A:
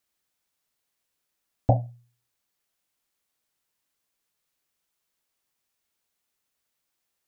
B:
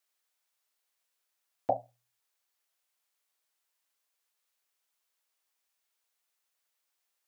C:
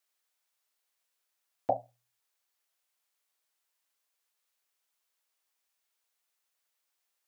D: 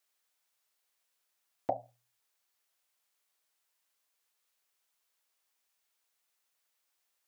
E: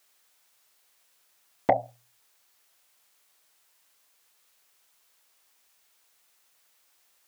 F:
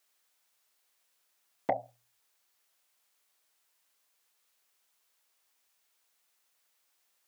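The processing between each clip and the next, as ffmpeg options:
ffmpeg -i in.wav -af "highpass=530,volume=-1.5dB" out.wav
ffmpeg -i in.wav -af anull out.wav
ffmpeg -i in.wav -af "acompressor=threshold=-29dB:ratio=6,volume=1.5dB" out.wav
ffmpeg -i in.wav -af "aeval=exprs='0.158*sin(PI/2*1.58*val(0)/0.158)':channel_layout=same,volume=5.5dB" out.wav
ffmpeg -i in.wav -af "highpass=120,volume=-8dB" out.wav

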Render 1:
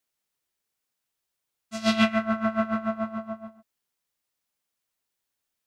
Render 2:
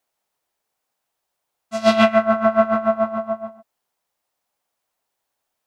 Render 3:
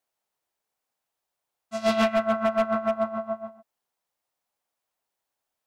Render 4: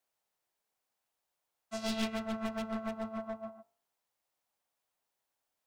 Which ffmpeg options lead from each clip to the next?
ffmpeg -i in.wav -af "equalizer=frequency=750:width=0.93:gain=11.5,volume=2.5dB" out.wav
ffmpeg -i in.wav -af "asoftclip=type=hard:threshold=-10.5dB,volume=-6dB" out.wav
ffmpeg -i in.wav -filter_complex "[0:a]acrossover=split=230|3000[link_01][link_02][link_03];[link_02]acompressor=threshold=-36dB:ratio=6[link_04];[link_01][link_04][link_03]amix=inputs=3:normalize=0,aeval=exprs='clip(val(0),-1,0.0211)':channel_layout=same,bandreject=frequency=49.07:width_type=h:width=4,bandreject=frequency=98.14:width_type=h:width=4,bandreject=frequency=147.21:width_type=h:width=4,bandreject=frequency=196.28:width_type=h:width=4,bandreject=frequency=245.35:width_type=h:width=4,bandreject=frequency=294.42:width_type=h:width=4,bandreject=frequency=343.49:width_type=h:width=4,bandreject=frequency=392.56:width_type=h:width=4,bandreject=frequency=441.63:width_type=h:width=4,bandreject=frequency=490.7:width_type=h:width=4,bandreject=frequency=539.77:width_type=h:width=4,bandreject=frequency=588.84:width_type=h:width=4,bandreject=frequency=637.91:width_type=h:width=4,bandreject=frequency=686.98:width_type=h:width=4,bandreject=frequency=736.05:width_type=h:width=4,bandreject=frequency=785.12:width_type=h:width=4,bandreject=frequency=834.19:width_type=h:width=4,bandreject=frequency=883.26:width_type=h:width=4,bandreject=frequency=932.33:width_type=h:width=4,bandreject=frequency=981.4:width_type=h:width=4,bandreject=frequency=1030.47:width_type=h:width=4,bandreject=frequency=1079.54:width_type=h:width=4,bandreject=frequency=1128.61:width_type=h:width=4,bandreject=frequency=1177.68:width_type=h:width=4,bandreject=frequency=1226.75:width_type=h:width=4,bandreject=frequency=1275.82:width_type=h:width=4,bandreject=frequency=1324.89:width_type=h:width=4,bandreject=frequency=1373.96:width_type=h:width=4,volume=-1.5dB" out.wav

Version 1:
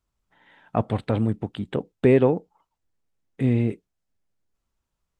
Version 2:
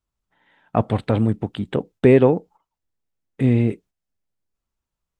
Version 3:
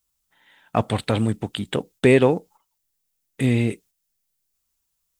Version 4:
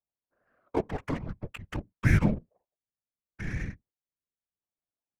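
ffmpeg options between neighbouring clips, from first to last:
ffmpeg -i in.wav -af "agate=range=-8dB:threshold=-48dB:ratio=16:detection=peak,volume=4dB" out.wav
ffmpeg -i in.wav -af "crystalizer=i=7:c=0,volume=-3dB" out.wav
ffmpeg -i in.wav -af "highpass=frequency=280:width_type=q:width=0.5412,highpass=frequency=280:width_type=q:width=1.307,lowpass=frequency=2700:width_type=q:width=0.5176,lowpass=frequency=2700:width_type=q:width=0.7071,lowpass=frequency=2700:width_type=q:width=1.932,afreqshift=-300,adynamicsmooth=sensitivity=5.5:basefreq=840,afftfilt=real='hypot(re,im)*cos(2*PI*random(0))':imag='hypot(re,im)*sin(2*PI*random(1))':win_size=512:overlap=0.75" out.wav

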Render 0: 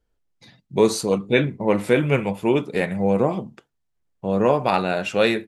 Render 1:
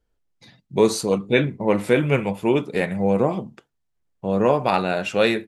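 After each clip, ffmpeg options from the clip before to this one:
ffmpeg -i in.wav -af anull out.wav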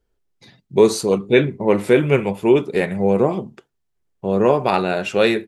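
ffmpeg -i in.wav -af "equalizer=frequency=390:width=6.5:gain=8.5,volume=1.5dB" out.wav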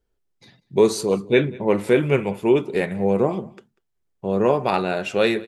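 ffmpeg -i in.wav -af "aecho=1:1:192:0.0668,volume=-3dB" out.wav

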